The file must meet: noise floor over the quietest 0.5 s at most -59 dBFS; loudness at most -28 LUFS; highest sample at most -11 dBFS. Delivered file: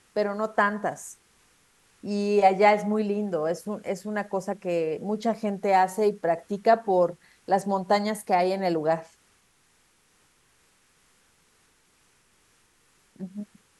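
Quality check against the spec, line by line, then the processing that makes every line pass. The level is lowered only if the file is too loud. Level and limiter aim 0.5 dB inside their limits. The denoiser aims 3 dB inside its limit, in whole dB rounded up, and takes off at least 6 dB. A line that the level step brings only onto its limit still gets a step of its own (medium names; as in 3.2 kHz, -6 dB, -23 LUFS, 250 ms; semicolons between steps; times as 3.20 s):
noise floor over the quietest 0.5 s -64 dBFS: pass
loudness -25.5 LUFS: fail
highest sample -7.0 dBFS: fail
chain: trim -3 dB; peak limiter -11.5 dBFS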